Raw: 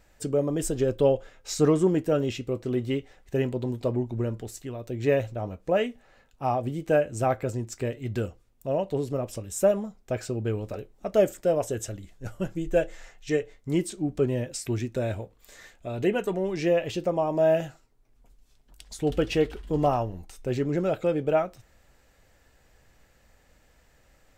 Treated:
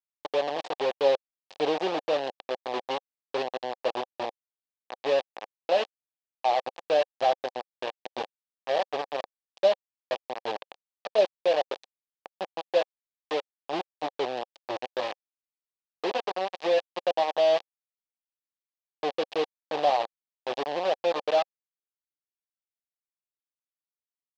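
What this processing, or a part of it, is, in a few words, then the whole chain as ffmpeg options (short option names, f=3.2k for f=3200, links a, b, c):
hand-held game console: -filter_complex "[0:a]asplit=3[a][b][c];[a]afade=t=out:st=10.54:d=0.02[d];[b]asubboost=boost=3.5:cutoff=100,afade=t=in:st=10.54:d=0.02,afade=t=out:st=11.17:d=0.02[e];[c]afade=t=in:st=11.17:d=0.02[f];[d][e][f]amix=inputs=3:normalize=0,acrusher=bits=3:mix=0:aa=0.000001,highpass=480,equalizer=f=540:t=q:w=4:g=5,equalizer=f=770:t=q:w=4:g=7,equalizer=f=1.4k:t=q:w=4:g=-10,equalizer=f=2.1k:t=q:w=4:g=-6,lowpass=f=4.3k:w=0.5412,lowpass=f=4.3k:w=1.3066,volume=-3dB"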